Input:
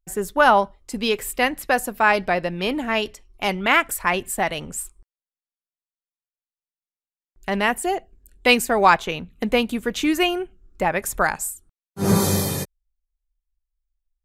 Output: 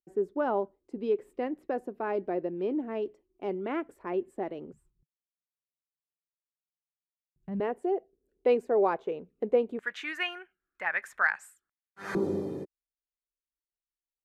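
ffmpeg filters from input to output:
ffmpeg -i in.wav -af "asetnsamples=nb_out_samples=441:pad=0,asendcmd='4.73 bandpass f 150;7.6 bandpass f 430;9.79 bandpass f 1700;12.15 bandpass f 340',bandpass=frequency=360:width_type=q:width=3.3:csg=0" out.wav

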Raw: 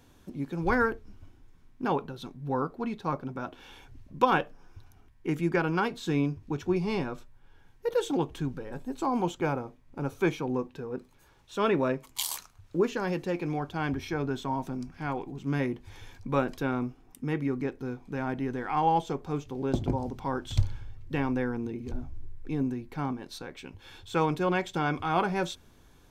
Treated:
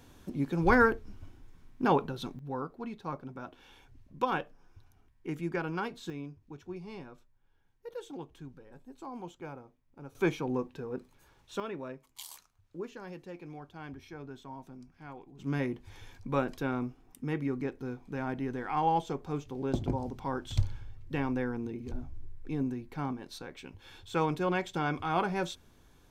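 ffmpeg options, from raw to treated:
ffmpeg -i in.wav -af "asetnsamples=nb_out_samples=441:pad=0,asendcmd='2.39 volume volume -7dB;6.1 volume volume -14.5dB;10.15 volume volume -2dB;11.6 volume volume -14dB;15.39 volume volume -3dB',volume=2.5dB" out.wav

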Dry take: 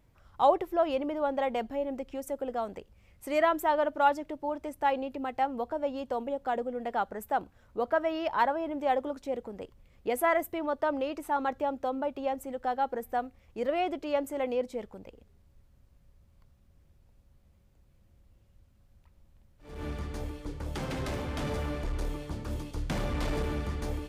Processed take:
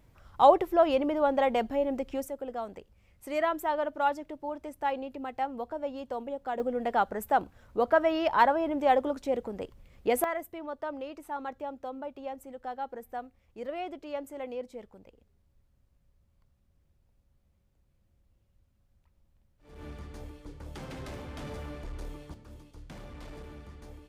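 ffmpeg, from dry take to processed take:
ffmpeg -i in.wav -af "asetnsamples=nb_out_samples=441:pad=0,asendcmd='2.27 volume volume -3dB;6.6 volume volume 4dB;10.24 volume volume -7dB;22.34 volume volume -14dB',volume=4dB" out.wav

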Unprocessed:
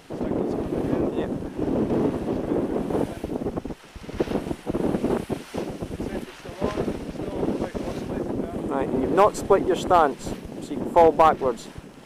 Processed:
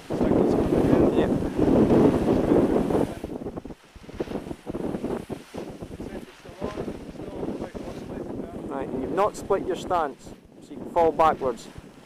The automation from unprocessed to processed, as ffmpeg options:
ffmpeg -i in.wav -af "volume=17.5dB,afade=type=out:start_time=2.63:duration=0.73:silence=0.298538,afade=type=out:start_time=9.83:duration=0.66:silence=0.334965,afade=type=in:start_time=10.49:duration=0.81:silence=0.237137" out.wav

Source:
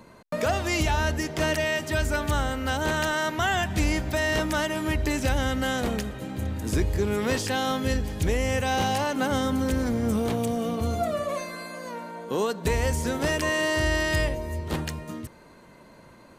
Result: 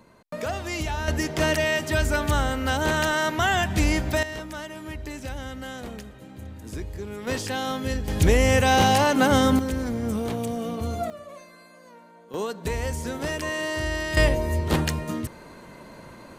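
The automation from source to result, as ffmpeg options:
ffmpeg -i in.wav -af "asetnsamples=nb_out_samples=441:pad=0,asendcmd='1.08 volume volume 2.5dB;4.23 volume volume -9.5dB;7.27 volume volume -2dB;8.08 volume volume 6.5dB;9.59 volume volume -2dB;11.1 volume volume -13dB;12.34 volume volume -3.5dB;14.17 volume volume 6.5dB',volume=-4.5dB" out.wav

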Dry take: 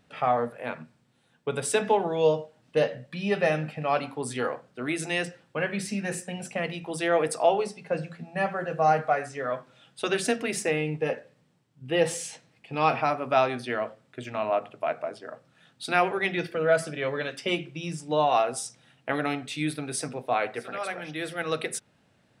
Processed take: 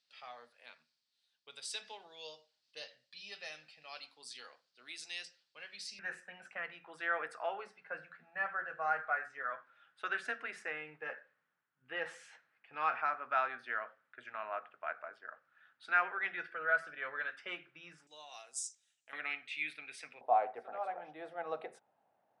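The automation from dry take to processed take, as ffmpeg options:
ffmpeg -i in.wav -af "asetnsamples=nb_out_samples=441:pad=0,asendcmd='5.99 bandpass f 1500;18.07 bandpass f 7100;19.13 bandpass f 2300;20.21 bandpass f 780',bandpass=frequency=4600:width_type=q:width=3.8:csg=0" out.wav

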